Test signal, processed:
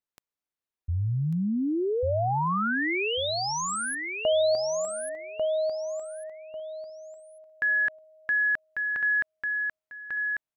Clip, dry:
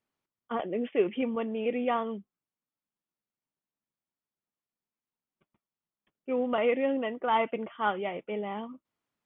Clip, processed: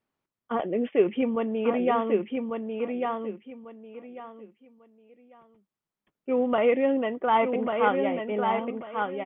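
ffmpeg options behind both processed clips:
-af "highshelf=f=3000:g=-8.5,aecho=1:1:1145|2290|3435:0.596|0.137|0.0315,volume=1.68"

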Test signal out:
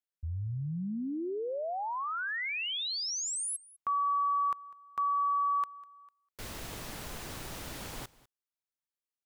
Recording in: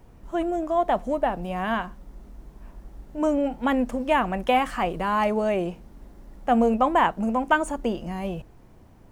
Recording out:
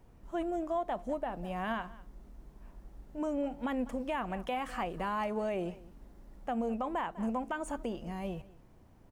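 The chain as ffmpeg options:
-af "aecho=1:1:199:0.0841,alimiter=limit=0.133:level=0:latency=1:release=161,volume=0.398"

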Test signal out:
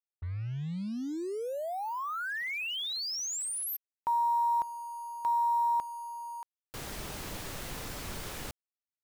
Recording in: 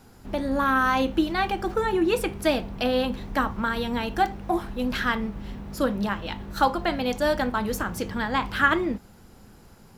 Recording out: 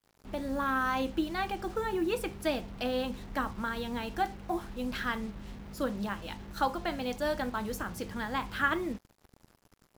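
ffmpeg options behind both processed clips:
-af "acrusher=bits=6:mix=0:aa=0.5,volume=0.398"

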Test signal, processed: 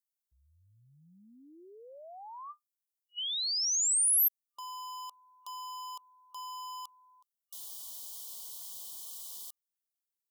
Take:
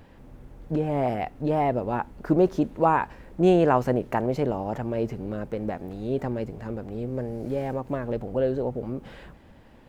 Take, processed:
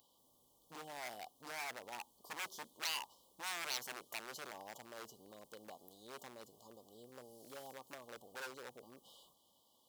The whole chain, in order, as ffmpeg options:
-af "afftfilt=real='re*(1-between(b*sr/4096,1200,2900))':imag='im*(1-between(b*sr/4096,1200,2900))':win_size=4096:overlap=0.75,aeval=exprs='0.0708*(abs(mod(val(0)/0.0708+3,4)-2)-1)':c=same,aderivative"

